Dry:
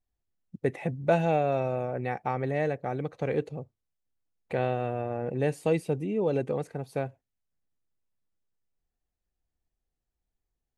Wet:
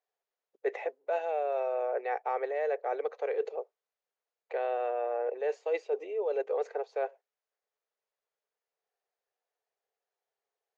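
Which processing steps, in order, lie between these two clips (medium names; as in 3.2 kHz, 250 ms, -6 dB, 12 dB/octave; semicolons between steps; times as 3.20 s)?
Chebyshev band-pass 420–6900 Hz, order 5; treble shelf 2.6 kHz -11 dB; reverse; compression 10:1, threshold -35 dBFS, peak gain reduction 16 dB; reverse; trim +7.5 dB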